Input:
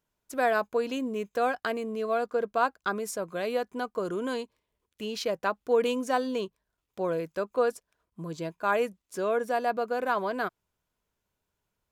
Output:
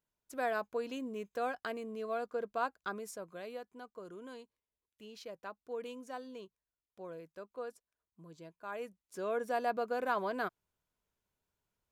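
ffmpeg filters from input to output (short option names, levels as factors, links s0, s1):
-af "volume=1.33,afade=t=out:st=2.79:d=0.9:silence=0.398107,afade=t=in:st=8.71:d=0.9:silence=0.266073"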